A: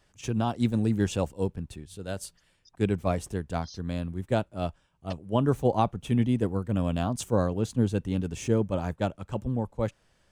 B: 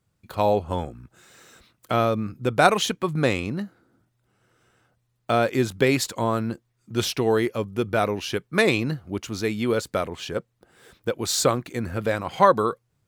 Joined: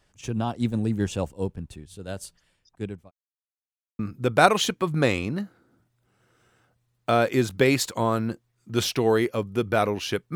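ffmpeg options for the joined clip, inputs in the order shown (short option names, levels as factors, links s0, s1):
-filter_complex "[0:a]apad=whole_dur=10.35,atrim=end=10.35,asplit=2[s0][s1];[s0]atrim=end=3.11,asetpts=PTS-STARTPTS,afade=t=out:st=2.25:d=0.86:c=qsin[s2];[s1]atrim=start=3.11:end=3.99,asetpts=PTS-STARTPTS,volume=0[s3];[1:a]atrim=start=2.2:end=8.56,asetpts=PTS-STARTPTS,afade=t=in:d=0.004:c=hsin[s4];[s2][s3][s4]concat=n=3:v=0:a=1"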